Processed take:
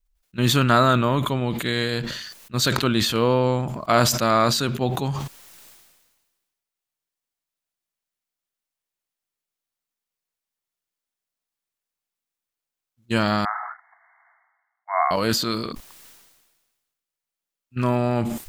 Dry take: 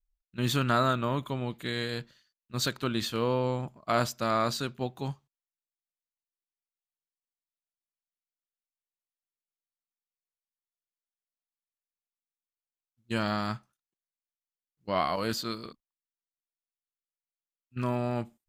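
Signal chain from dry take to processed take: 13.45–15.11 s: brick-wall FIR band-pass 650–2200 Hz; decay stretcher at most 42 dB/s; trim +8 dB

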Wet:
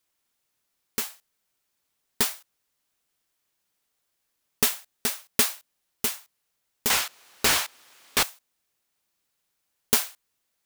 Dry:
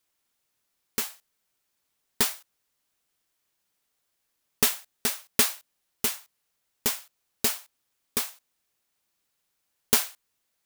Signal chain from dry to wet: 6.90–8.23 s: overdrive pedal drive 35 dB, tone 3.3 kHz, clips at -7 dBFS

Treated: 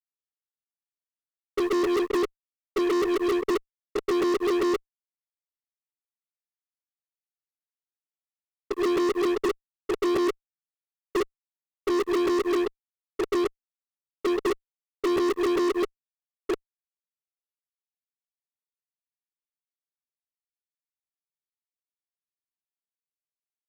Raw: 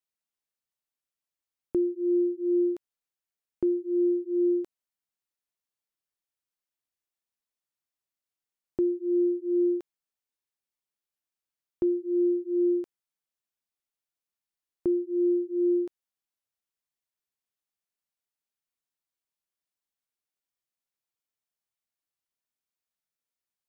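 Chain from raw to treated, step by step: slices played last to first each 132 ms, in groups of 6; formant shift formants +3 st; fuzz box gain 44 dB, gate -49 dBFS; trim -8.5 dB

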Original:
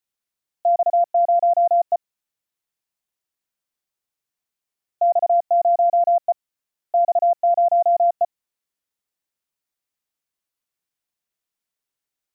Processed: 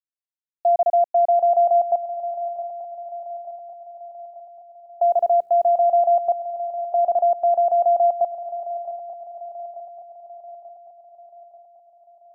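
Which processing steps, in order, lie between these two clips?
5.04–5.83 s: hum notches 60/120/180/240/300/360/420/480 Hz; word length cut 12-bit, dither none; shuffle delay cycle 887 ms, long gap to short 3:1, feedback 53%, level -14 dB

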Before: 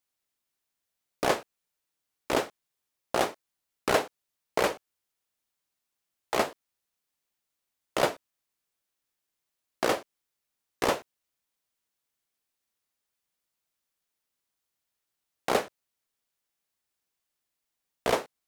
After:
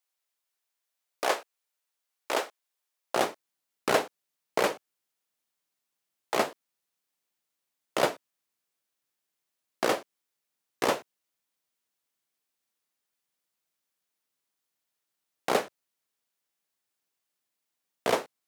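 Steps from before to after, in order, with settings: high-pass 490 Hz 12 dB/octave, from 3.16 s 130 Hz

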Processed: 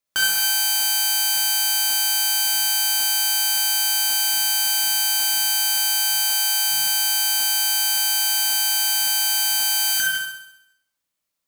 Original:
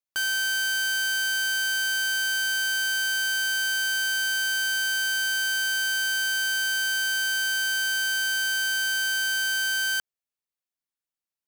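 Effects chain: 6.00–6.67 s: hum notches 50/100/150/200/250/300/350 Hz; gated-style reverb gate 300 ms falling, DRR -1.5 dB; 9.93–10.14 s: spectral replace 330–1400 Hz; on a send: flutter echo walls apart 11.3 m, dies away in 0.78 s; on the sum: crackling interface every 0.55 s, samples 1024, repeat, from 0.78 s; trim +6.5 dB

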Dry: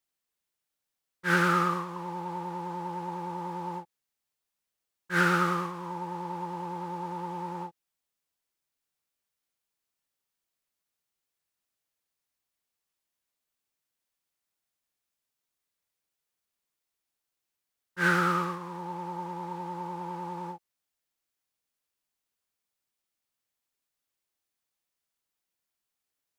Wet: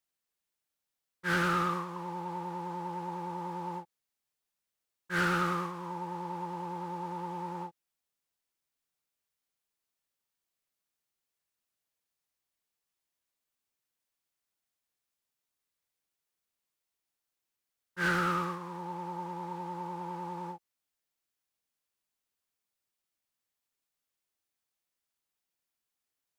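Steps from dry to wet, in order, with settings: saturation -20.5 dBFS, distortion -15 dB; trim -2 dB

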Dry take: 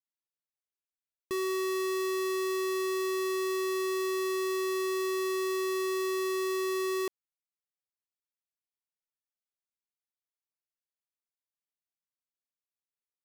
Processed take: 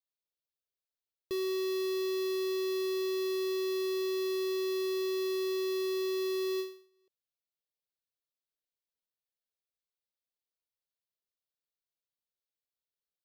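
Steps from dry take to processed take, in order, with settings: graphic EQ 250/500/1000/2000/4000/8000 Hz -9/+7/-11/-7/+6/-12 dB; endings held to a fixed fall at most 130 dB/s

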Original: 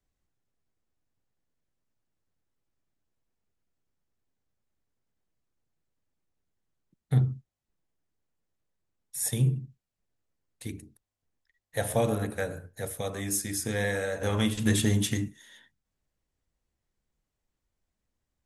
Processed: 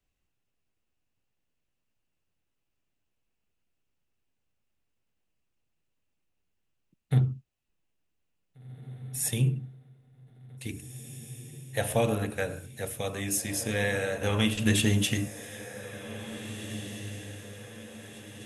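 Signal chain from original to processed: peaking EQ 2.7 kHz +10.5 dB 0.39 oct; on a send: echo that smears into a reverb 1942 ms, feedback 52%, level -12.5 dB

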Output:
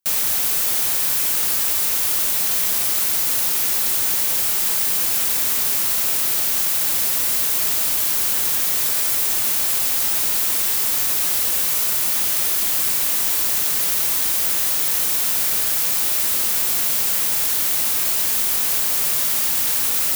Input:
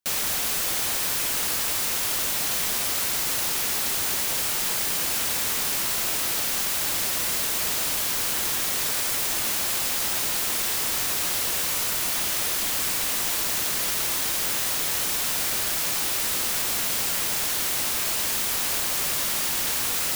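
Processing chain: treble shelf 8.9 kHz +9 dB

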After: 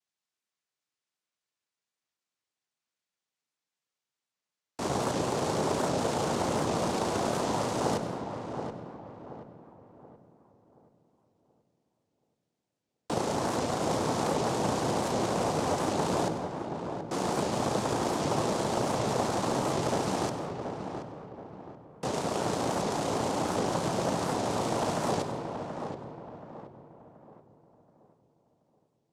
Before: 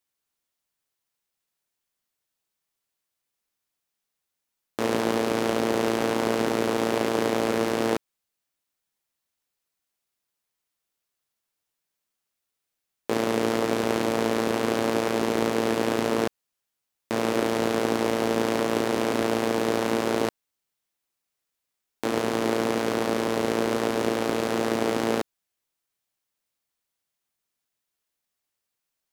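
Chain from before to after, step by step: peaking EQ 240 Hz +7 dB 0.77 oct; noise-vocoded speech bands 2; filtered feedback delay 728 ms, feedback 40%, low-pass 1.7 kHz, level -6.5 dB; on a send at -9 dB: reverberation RT60 1.7 s, pre-delay 97 ms; on the sum: warped record 78 rpm, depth 160 cents; trim -8.5 dB

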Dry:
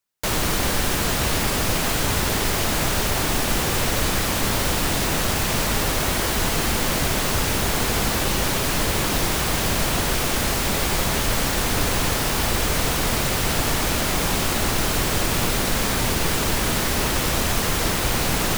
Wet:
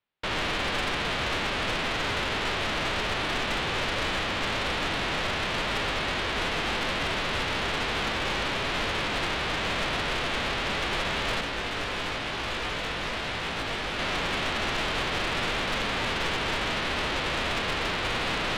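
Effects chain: formants flattened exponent 0.3; inverse Chebyshev low-pass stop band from 8.4 kHz, stop band 50 dB; saturation -25.5 dBFS, distortion -11 dB; 11.41–13.99 s: chorus 1 Hz, delay 17.5 ms, depth 2.5 ms; trim +1.5 dB

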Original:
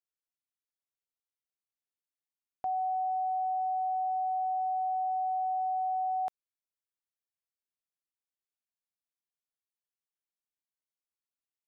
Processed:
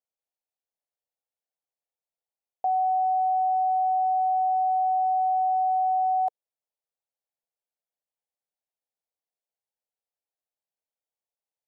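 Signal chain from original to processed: high-order bell 630 Hz +13 dB 1.2 oct; trim -5.5 dB

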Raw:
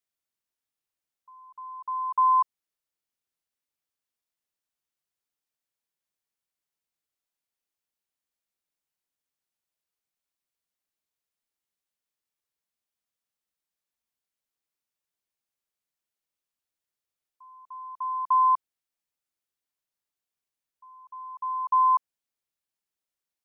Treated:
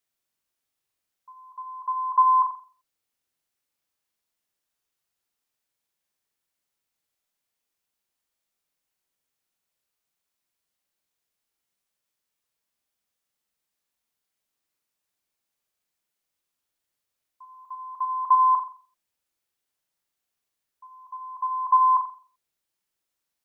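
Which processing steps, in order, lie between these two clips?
17.54–18.26 s: comb 4.6 ms, depth 41%; flutter echo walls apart 7.4 m, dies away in 0.41 s; trim +5 dB

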